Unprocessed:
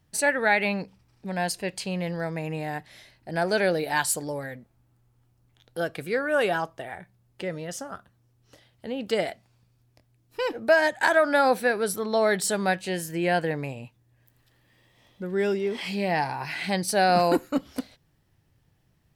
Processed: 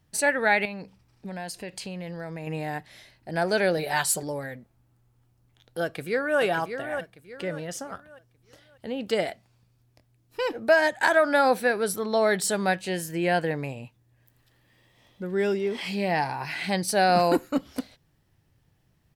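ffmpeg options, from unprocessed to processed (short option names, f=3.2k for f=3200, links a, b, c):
-filter_complex "[0:a]asettb=1/sr,asplit=3[a][b][c];[a]atrim=end=0.654[d];[b]atrim=start=0.65:end=2.47,asetpts=PTS-STARTPTS,afade=t=in:d=0.004:c=qsin,afade=t=out:st=1.816:d=0.004:c=qsin,acompressor=threshold=-32dB:ratio=6:attack=3.2:release=140:knee=1:detection=peak[e];[c]atrim=start=2.466[f];[d][e]acrossfade=d=0.004:c1=hsin:c2=qsin[g];[g][f]acrossfade=d=0.004:c1=qsin:c2=hsin,asettb=1/sr,asplit=3[h][i][j];[h]atrim=end=3.774[k];[i]atrim=start=3.77:end=4.23,asetpts=PTS-STARTPTS,afade=t=in:d=0.004:c=qsin,afade=t=out:st=0.456:d=0.004:c=qsin,aecho=1:1:5.2:0.65,atrim=end_sample=20286[l];[j]atrim=start=4.226[m];[k][l]acrossfade=d=0.004:c1=hsin:c2=qsin[n];[n][m]acrossfade=d=0.004:c1=qsin:c2=hsin,asplit=2[o][p];[p]afade=t=in:st=5.82:d=0.01,afade=t=out:st=6.41:d=0.01,aecho=0:1:590|1180|1770|2360:0.398107|0.139338|0.0487681|0.0170688[q];[o][q]amix=inputs=2:normalize=0"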